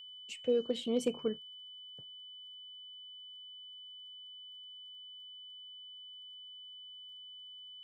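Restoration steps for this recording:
clipped peaks rebuilt −21 dBFS
click removal
notch filter 3,000 Hz, Q 30

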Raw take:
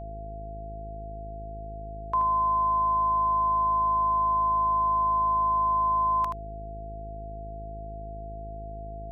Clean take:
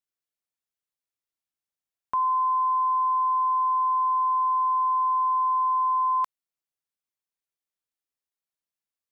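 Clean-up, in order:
hum removal 52.9 Hz, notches 9
notch filter 680 Hz, Q 30
echo removal 78 ms −7 dB

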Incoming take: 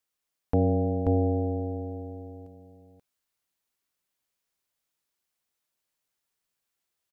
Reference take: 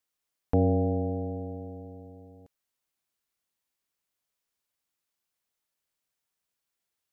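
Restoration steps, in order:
echo removal 533 ms −3.5 dB

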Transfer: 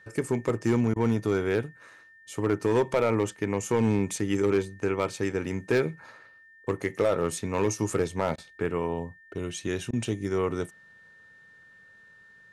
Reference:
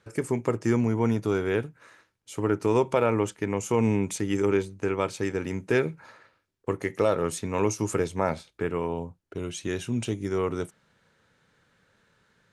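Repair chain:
clipped peaks rebuilt −16.5 dBFS
notch filter 1,800 Hz, Q 30
repair the gap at 0:03.99/0:07.90, 3.1 ms
repair the gap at 0:00.94/0:08.36/0:09.91, 19 ms

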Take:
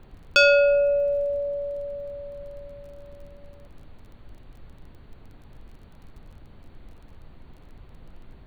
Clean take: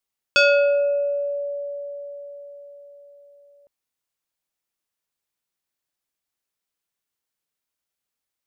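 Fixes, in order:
click removal
noise reduction from a noise print 30 dB

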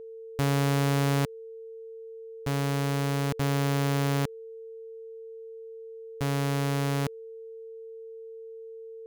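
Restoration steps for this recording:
notch filter 450 Hz, Q 30

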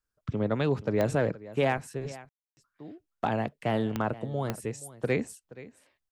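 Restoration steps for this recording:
clipped peaks rebuilt −16 dBFS
click removal
ambience match 0:02.29–0:02.57
echo removal 475 ms −18 dB

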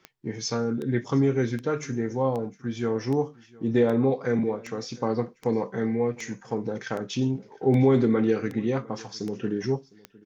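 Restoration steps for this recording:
click removal
echo removal 707 ms −23.5 dB

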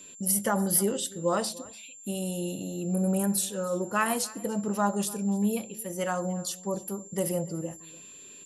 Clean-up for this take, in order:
notch filter 7,300 Hz, Q 30
echo removal 291 ms −21 dB

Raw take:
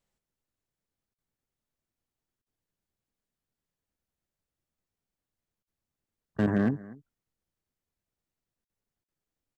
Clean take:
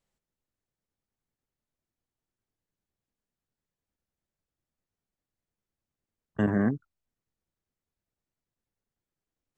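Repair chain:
clipped peaks rebuilt −17.5 dBFS
repair the gap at 0:01.14/0:02.42/0:05.63/0:08.65/0:09.04, 42 ms
echo removal 243 ms −20.5 dB

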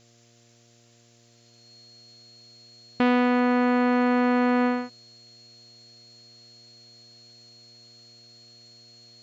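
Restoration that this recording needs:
hum removal 117.6 Hz, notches 6
notch filter 4,300 Hz, Q 30
broadband denoise 13 dB, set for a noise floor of −58 dBFS

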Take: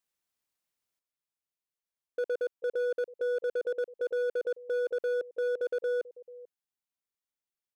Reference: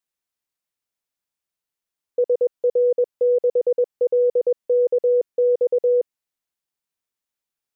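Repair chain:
clipped peaks rebuilt −27.5 dBFS
echo removal 440 ms −21 dB
level correction +9 dB, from 0:00.99

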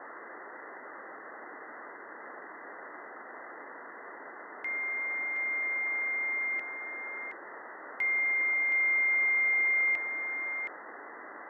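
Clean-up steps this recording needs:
noise reduction from a noise print 30 dB
echo removal 720 ms −6.5 dB

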